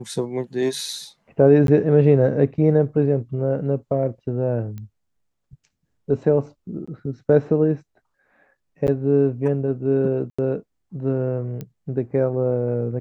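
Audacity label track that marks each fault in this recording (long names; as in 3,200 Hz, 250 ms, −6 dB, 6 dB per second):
1.670000	1.680000	drop-out 12 ms
4.780000	4.780000	click −23 dBFS
6.860000	6.880000	drop-out 15 ms
8.870000	8.880000	drop-out 9.3 ms
10.300000	10.380000	drop-out 85 ms
11.610000	11.610000	click −20 dBFS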